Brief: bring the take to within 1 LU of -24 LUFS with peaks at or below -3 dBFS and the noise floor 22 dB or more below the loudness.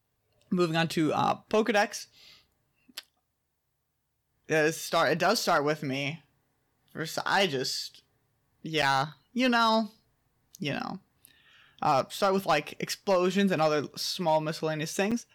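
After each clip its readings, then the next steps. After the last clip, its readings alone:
clipped samples 0.3%; clipping level -17.0 dBFS; dropouts 2; longest dropout 6.3 ms; loudness -28.0 LUFS; peak level -17.0 dBFS; loudness target -24.0 LUFS
-> clip repair -17 dBFS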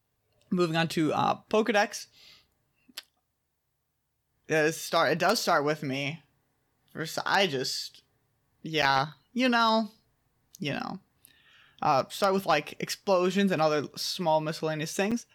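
clipped samples 0.0%; dropouts 2; longest dropout 6.3 ms
-> interpolate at 8.82/15.11 s, 6.3 ms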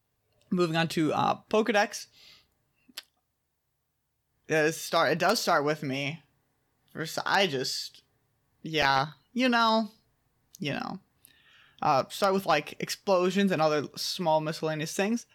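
dropouts 0; loudness -27.5 LUFS; peak level -8.0 dBFS; loudness target -24.0 LUFS
-> trim +3.5 dB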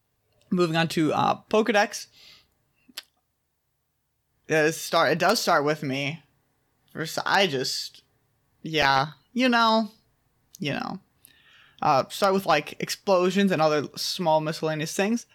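loudness -24.0 LUFS; peak level -4.5 dBFS; noise floor -75 dBFS

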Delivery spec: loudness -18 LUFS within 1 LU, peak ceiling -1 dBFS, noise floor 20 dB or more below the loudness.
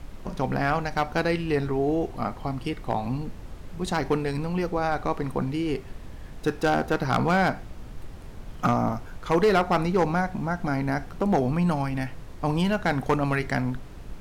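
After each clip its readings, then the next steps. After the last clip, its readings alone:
clipped samples 0.8%; clipping level -15.0 dBFS; noise floor -41 dBFS; noise floor target -46 dBFS; loudness -26.0 LUFS; peak level -15.0 dBFS; loudness target -18.0 LUFS
-> clip repair -15 dBFS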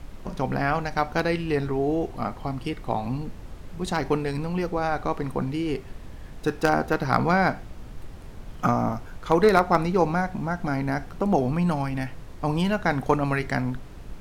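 clipped samples 0.0%; noise floor -41 dBFS; noise floor target -46 dBFS
-> noise print and reduce 6 dB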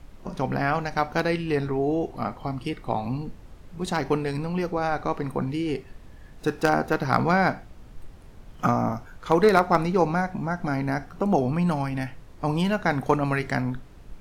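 noise floor -47 dBFS; loudness -25.5 LUFS; peak level -6.0 dBFS; loudness target -18.0 LUFS
-> trim +7.5 dB; peak limiter -1 dBFS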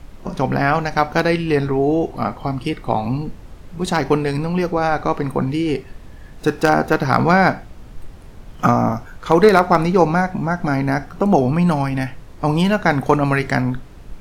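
loudness -18.5 LUFS; peak level -1.0 dBFS; noise floor -40 dBFS

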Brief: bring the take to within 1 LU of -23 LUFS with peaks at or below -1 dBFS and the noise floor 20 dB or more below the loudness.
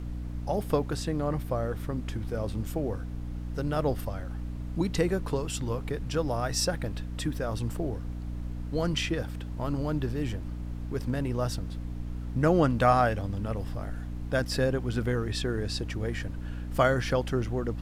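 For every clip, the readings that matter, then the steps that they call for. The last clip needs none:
hum 60 Hz; highest harmonic 300 Hz; hum level -33 dBFS; noise floor -36 dBFS; noise floor target -51 dBFS; loudness -30.5 LUFS; peak level -10.0 dBFS; loudness target -23.0 LUFS
-> de-hum 60 Hz, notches 5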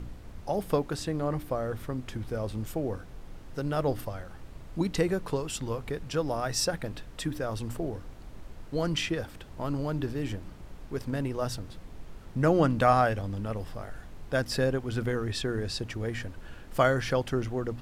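hum not found; noise floor -46 dBFS; noise floor target -51 dBFS
-> noise print and reduce 6 dB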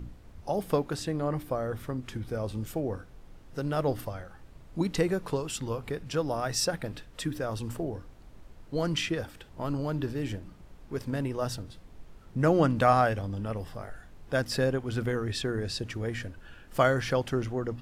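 noise floor -52 dBFS; loudness -30.5 LUFS; peak level -9.0 dBFS; loudness target -23.0 LUFS
-> trim +7.5 dB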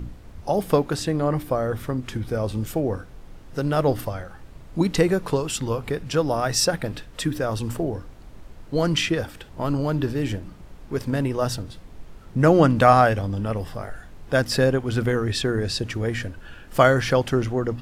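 loudness -23.0 LUFS; peak level -1.5 dBFS; noise floor -44 dBFS

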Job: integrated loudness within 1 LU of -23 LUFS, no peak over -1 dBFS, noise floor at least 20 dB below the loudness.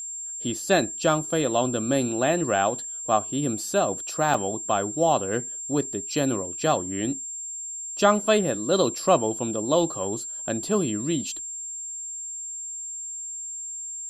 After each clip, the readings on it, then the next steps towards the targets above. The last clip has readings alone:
dropouts 1; longest dropout 3.5 ms; steady tone 7.4 kHz; tone level -32 dBFS; loudness -25.5 LUFS; peak level -6.0 dBFS; loudness target -23.0 LUFS
-> interpolate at 4.34 s, 3.5 ms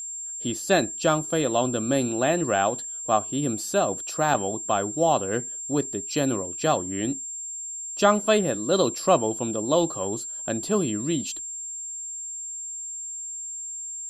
dropouts 0; steady tone 7.4 kHz; tone level -32 dBFS
-> band-stop 7.4 kHz, Q 30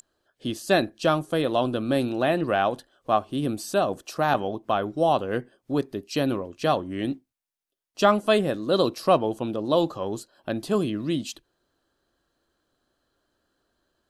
steady tone not found; loudness -25.5 LUFS; peak level -6.0 dBFS; loudness target -23.0 LUFS
-> trim +2.5 dB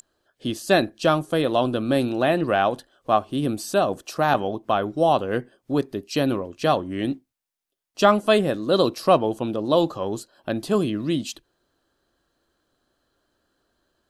loudness -23.0 LUFS; peak level -3.5 dBFS; noise floor -79 dBFS

